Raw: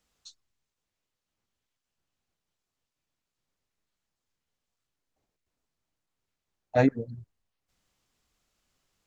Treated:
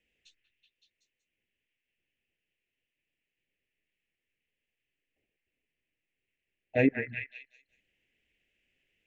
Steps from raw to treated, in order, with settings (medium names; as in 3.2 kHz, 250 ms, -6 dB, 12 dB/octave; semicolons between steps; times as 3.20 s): FFT filter 160 Hz 0 dB, 370 Hz +6 dB, 530 Hz +4 dB, 1.2 kHz -19 dB, 1.8 kHz +8 dB, 2.7 kHz +14 dB, 4.2 kHz -10 dB; repeats whose band climbs or falls 188 ms, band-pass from 1.5 kHz, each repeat 0.7 oct, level -1 dB; trim -5.5 dB